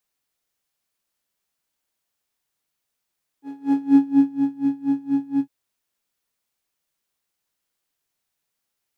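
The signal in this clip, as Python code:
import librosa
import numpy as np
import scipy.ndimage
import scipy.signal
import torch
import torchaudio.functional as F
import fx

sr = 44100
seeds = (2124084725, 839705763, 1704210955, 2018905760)

y = fx.sub_patch_tremolo(sr, seeds[0], note=61, wave='triangle', wave2='saw', interval_st=19, detune_cents=16, level2_db=-6.0, sub_db=-24.5, noise_db=-10, kind='bandpass', cutoff_hz=150.0, q=2.3, env_oct=1.5, env_decay_s=1.01, env_sustain_pct=40, attack_ms=459.0, decay_s=0.54, sustain_db=-6, release_s=0.08, note_s=1.98, lfo_hz=4.2, tremolo_db=24.0)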